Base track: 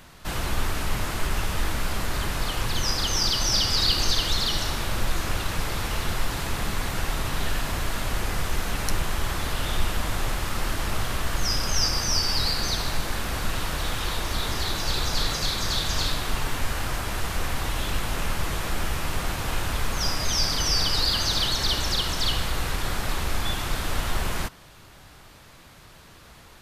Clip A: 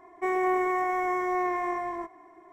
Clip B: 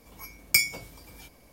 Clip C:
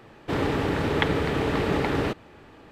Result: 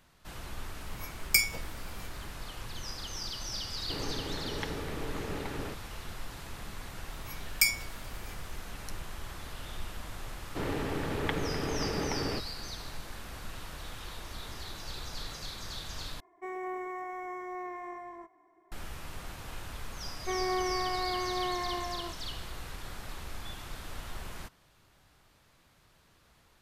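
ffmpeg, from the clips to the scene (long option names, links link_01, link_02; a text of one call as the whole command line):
ffmpeg -i bed.wav -i cue0.wav -i cue1.wav -i cue2.wav -filter_complex "[2:a]asplit=2[link_01][link_02];[3:a]asplit=2[link_03][link_04];[1:a]asplit=2[link_05][link_06];[0:a]volume=-15dB[link_07];[link_02]highpass=1000[link_08];[link_07]asplit=2[link_09][link_10];[link_09]atrim=end=16.204[link_11];[link_05]atrim=end=2.52,asetpts=PTS-STARTPTS,volume=-12dB[link_12];[link_10]atrim=start=18.716[link_13];[link_01]atrim=end=1.52,asetpts=PTS-STARTPTS,volume=-3dB,afade=type=in:duration=0.004:curve=hsin,afade=type=out:start_time=1.516:duration=0.004:curve=hsin,adelay=800[link_14];[link_03]atrim=end=2.71,asetpts=PTS-STARTPTS,volume=-14dB,afade=type=in:duration=0.004:curve=hsin,afade=type=out:start_time=2.706:duration=0.004:curve=hsin,adelay=159201S[link_15];[link_08]atrim=end=1.52,asetpts=PTS-STARTPTS,volume=-3.5dB,afade=type=in:duration=0.004:curve=hsin,afade=type=out:start_time=1.516:duration=0.004:curve=hsin,adelay=7070[link_16];[link_04]atrim=end=2.71,asetpts=PTS-STARTPTS,volume=-9dB,afade=type=in:duration=0.004:curve=hsin,afade=type=out:start_time=2.706:duration=0.004:curve=hsin,adelay=10270[link_17];[link_06]atrim=end=2.52,asetpts=PTS-STARTPTS,volume=-6dB,afade=type=in:duration=0.004:curve=hsin,afade=type=out:start_time=2.516:duration=0.004:curve=hsin,adelay=20050[link_18];[link_11][link_12]acrossfade=duration=0.004:curve1=hsin:curve2=hsin[link_19];[link_19][link_13]acrossfade=duration=0.004:curve1=hsin:curve2=hsin[link_20];[link_20][link_14][link_15][link_16][link_17][link_18]amix=inputs=6:normalize=0" out.wav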